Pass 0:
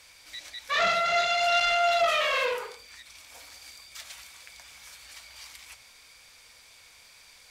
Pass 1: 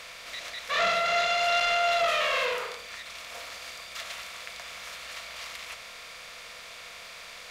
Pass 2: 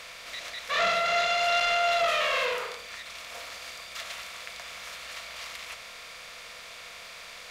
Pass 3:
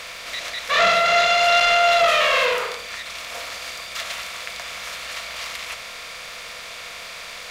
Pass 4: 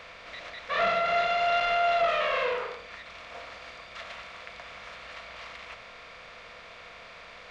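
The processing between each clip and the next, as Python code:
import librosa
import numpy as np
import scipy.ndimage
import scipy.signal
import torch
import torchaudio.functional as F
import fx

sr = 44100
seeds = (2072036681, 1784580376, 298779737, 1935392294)

y1 = fx.bin_compress(x, sr, power=0.6)
y1 = F.gain(torch.from_numpy(y1), -3.5).numpy()
y2 = y1
y3 = fx.dmg_crackle(y2, sr, seeds[0], per_s=31.0, level_db=-42.0)
y3 = F.gain(torch.from_numpy(y3), 8.5).numpy()
y4 = fx.spacing_loss(y3, sr, db_at_10k=28)
y4 = F.gain(torch.from_numpy(y4), -5.0).numpy()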